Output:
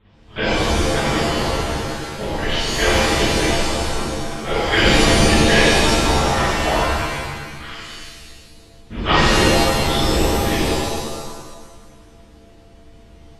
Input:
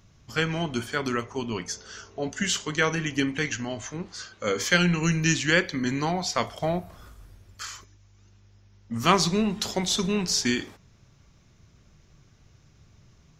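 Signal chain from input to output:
one scale factor per block 3 bits
linear-prediction vocoder at 8 kHz whisper
mains hum 50 Hz, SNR 32 dB
reverb with rising layers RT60 1.4 s, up +7 semitones, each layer −2 dB, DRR −11 dB
level −4.5 dB

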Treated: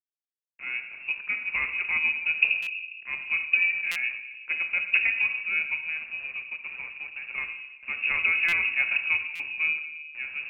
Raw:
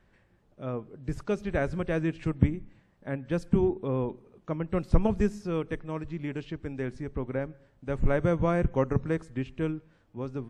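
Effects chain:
running median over 25 samples
high-pass filter 79 Hz 12 dB per octave
0:05.83–0:07.38: downward compressor, threshold −33 dBFS, peak gain reduction 6 dB
centre clipping without the shift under −45.5 dBFS
convolution reverb RT60 1.1 s, pre-delay 6 ms, DRR 5.5 dB
voice inversion scrambler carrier 2,700 Hz
buffer that repeats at 0:02.62/0:03.91/0:08.48/0:09.35, samples 256, times 7

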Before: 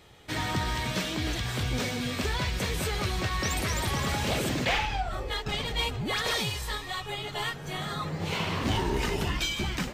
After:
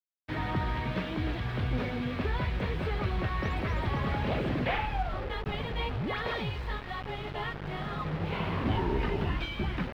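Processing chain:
high-shelf EQ 3,700 Hz −4 dB
mains hum 50 Hz, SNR 14 dB
bit-depth reduction 6 bits, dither none
high-frequency loss of the air 390 metres

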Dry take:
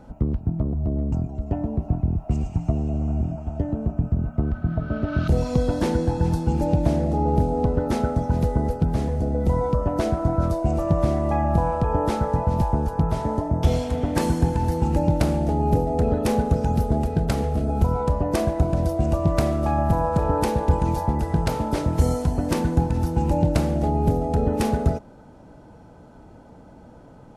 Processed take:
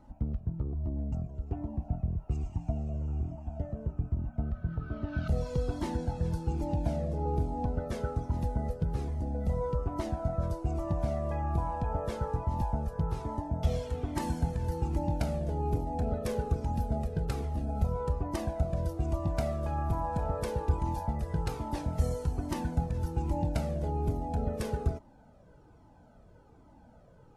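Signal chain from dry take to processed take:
flanger whose copies keep moving one way falling 1.2 Hz
level −6.5 dB

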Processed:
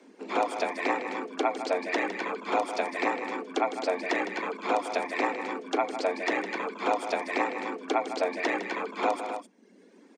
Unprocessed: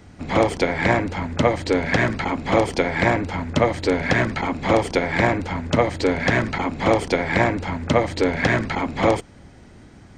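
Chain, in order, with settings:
reverb reduction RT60 1.1 s
frequency shifter +180 Hz
loudspeakers that aren't time-aligned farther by 54 metres −10 dB, 89 metres −9 dB
level −8.5 dB

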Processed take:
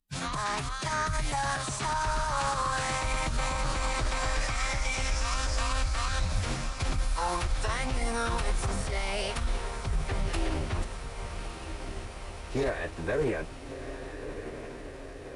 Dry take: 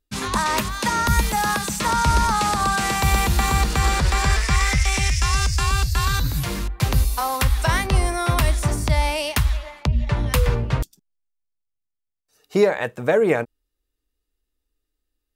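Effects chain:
brickwall limiter −14.5 dBFS, peak gain reduction 8 dB
on a send: feedback delay with all-pass diffusion 1,253 ms, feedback 69%, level −9 dB
on the sum: phase-vocoder pitch shift with formants kept −7 semitones
highs frequency-modulated by the lows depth 0.15 ms
level −6 dB

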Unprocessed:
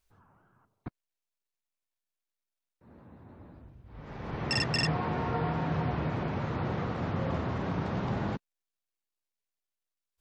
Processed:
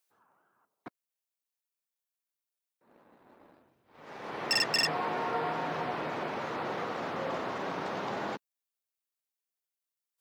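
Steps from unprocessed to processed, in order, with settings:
high-pass filter 390 Hz 12 dB per octave
high-shelf EQ 8,000 Hz +9 dB
leveller curve on the samples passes 1
level −1.5 dB

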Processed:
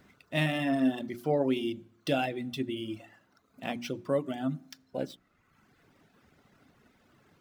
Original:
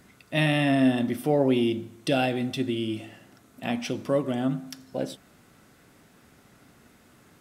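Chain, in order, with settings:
running median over 5 samples
reverb reduction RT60 1.1 s
mains-hum notches 60/120/180/240/300/360 Hz
level −3.5 dB

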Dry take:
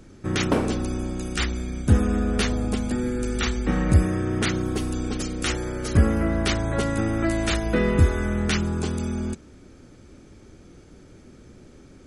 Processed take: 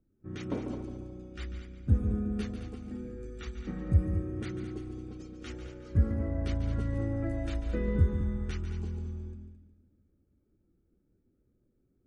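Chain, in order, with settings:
low-pass that shuts in the quiet parts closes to 1,900 Hz, open at −19 dBFS
echo machine with several playback heads 72 ms, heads second and third, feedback 48%, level −7.5 dB
every bin expanded away from the loudest bin 1.5 to 1
level −7.5 dB

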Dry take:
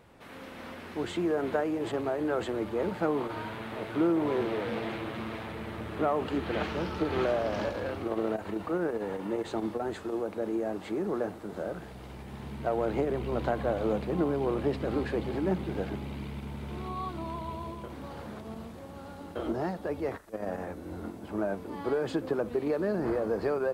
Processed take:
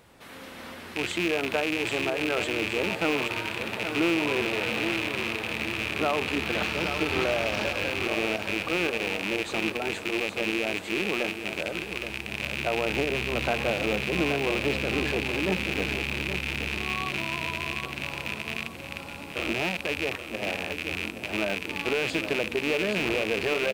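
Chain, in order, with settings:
loose part that buzzes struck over −41 dBFS, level −22 dBFS
high-shelf EQ 2,400 Hz +9.5 dB
on a send: repeating echo 823 ms, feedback 46%, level −9 dB

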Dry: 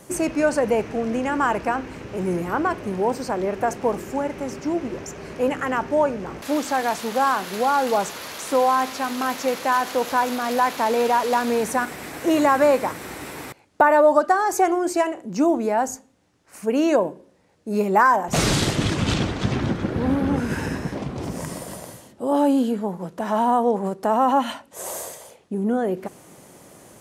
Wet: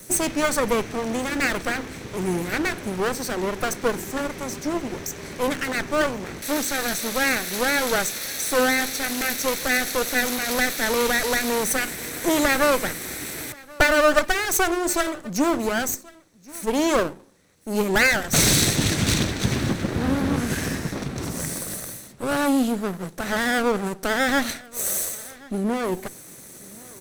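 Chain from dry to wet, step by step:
lower of the sound and its delayed copy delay 0.51 ms
high-shelf EQ 4,000 Hz +11.5 dB
on a send: single-tap delay 1,081 ms −23.5 dB

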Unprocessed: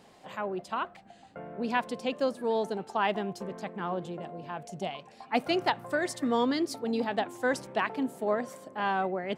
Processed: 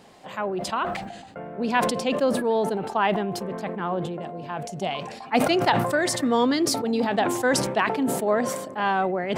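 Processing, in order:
0:02.15–0:04.21: parametric band 6,400 Hz −7 dB 1.3 octaves
level that may fall only so fast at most 48 dB per second
level +5.5 dB

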